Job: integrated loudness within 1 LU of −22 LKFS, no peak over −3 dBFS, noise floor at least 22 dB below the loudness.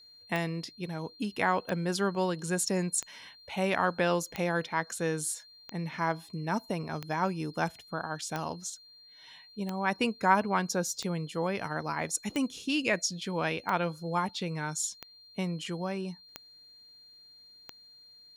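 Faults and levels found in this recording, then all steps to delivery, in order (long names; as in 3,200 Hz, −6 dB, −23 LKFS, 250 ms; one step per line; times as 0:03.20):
number of clicks 14; interfering tone 4,200 Hz; level of the tone −53 dBFS; integrated loudness −32.0 LKFS; sample peak −9.0 dBFS; target loudness −22.0 LKFS
→ click removal
notch filter 4,200 Hz, Q 30
level +10 dB
brickwall limiter −3 dBFS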